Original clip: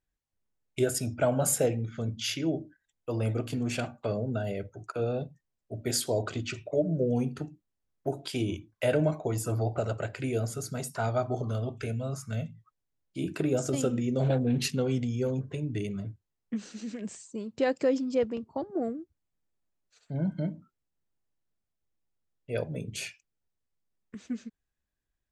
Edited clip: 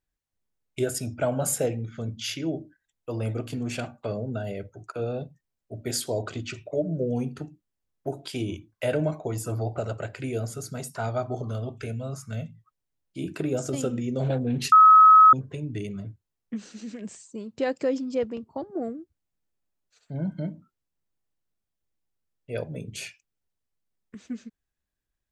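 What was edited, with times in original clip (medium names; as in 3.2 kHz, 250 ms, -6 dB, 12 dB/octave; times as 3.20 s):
14.72–15.33 s: bleep 1.28 kHz -9.5 dBFS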